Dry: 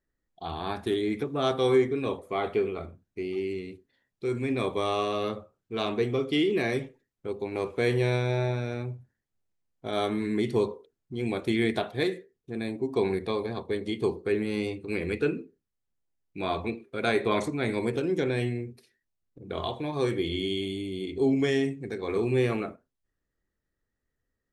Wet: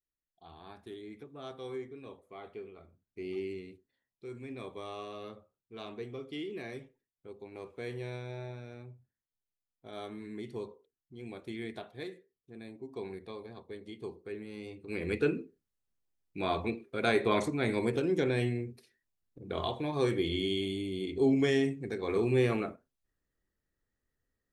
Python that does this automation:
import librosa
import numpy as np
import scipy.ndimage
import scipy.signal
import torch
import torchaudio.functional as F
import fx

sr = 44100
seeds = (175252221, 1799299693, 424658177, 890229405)

y = fx.gain(x, sr, db=fx.line((2.87, -18.0), (3.31, -5.0), (4.27, -14.5), (14.61, -14.5), (15.14, -2.0)))